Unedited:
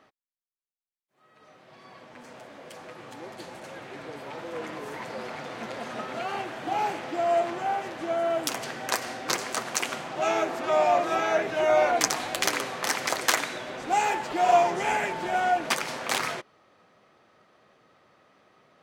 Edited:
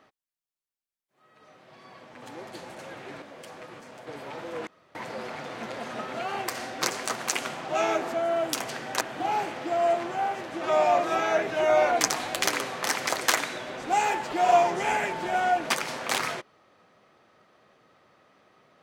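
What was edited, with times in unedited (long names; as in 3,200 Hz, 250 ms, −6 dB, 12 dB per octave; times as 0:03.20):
0:02.22–0:02.49: swap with 0:03.07–0:04.07
0:04.67–0:04.95: fill with room tone
0:06.48–0:08.08: swap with 0:08.95–0:10.61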